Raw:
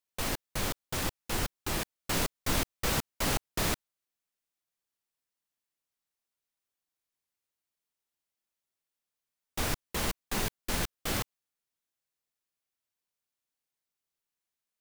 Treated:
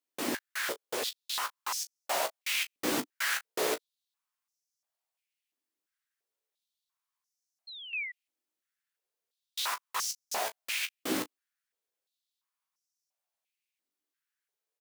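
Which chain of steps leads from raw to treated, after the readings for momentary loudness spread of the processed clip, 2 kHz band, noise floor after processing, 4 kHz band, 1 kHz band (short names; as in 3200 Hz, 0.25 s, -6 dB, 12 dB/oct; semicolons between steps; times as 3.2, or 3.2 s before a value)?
5 LU, +2.5 dB, under -85 dBFS, +1.0 dB, +1.0 dB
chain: early reflections 16 ms -6 dB, 36 ms -14.5 dB; painted sound fall, 7.67–8.12, 1900–4300 Hz -42 dBFS; stepped high-pass 2.9 Hz 290–5700 Hz; gain -3 dB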